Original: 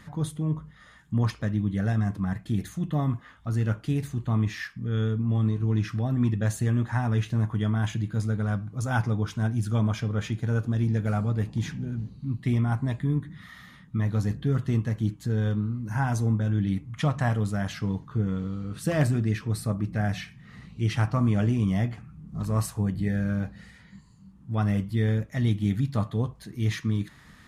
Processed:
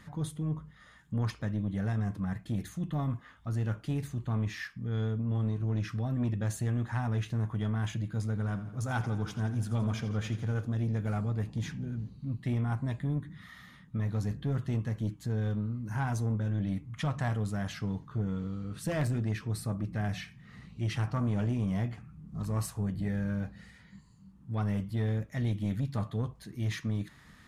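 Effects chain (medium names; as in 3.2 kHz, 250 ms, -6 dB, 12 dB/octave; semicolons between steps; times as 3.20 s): saturation -20 dBFS, distortion -17 dB; 8.27–10.64 s: modulated delay 84 ms, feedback 64%, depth 51 cents, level -13 dB; trim -4 dB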